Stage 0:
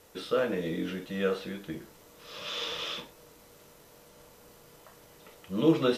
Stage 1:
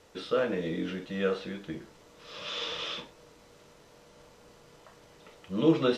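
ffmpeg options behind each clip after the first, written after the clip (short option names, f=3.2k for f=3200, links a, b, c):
-af "lowpass=6.5k"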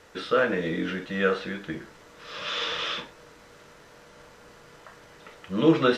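-af "equalizer=f=1.6k:w=1.5:g=8,volume=3.5dB"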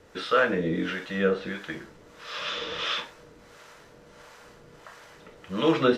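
-filter_complex "[0:a]acrossover=split=540[a][b];[a]aeval=exprs='val(0)*(1-0.7/2+0.7/2*cos(2*PI*1.5*n/s))':c=same[c];[b]aeval=exprs='val(0)*(1-0.7/2-0.7/2*cos(2*PI*1.5*n/s))':c=same[d];[c][d]amix=inputs=2:normalize=0,volume=3.5dB"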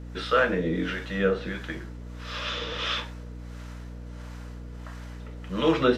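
-af "aeval=exprs='val(0)+0.0126*(sin(2*PI*60*n/s)+sin(2*PI*2*60*n/s)/2+sin(2*PI*3*60*n/s)/3+sin(2*PI*4*60*n/s)/4+sin(2*PI*5*60*n/s)/5)':c=same"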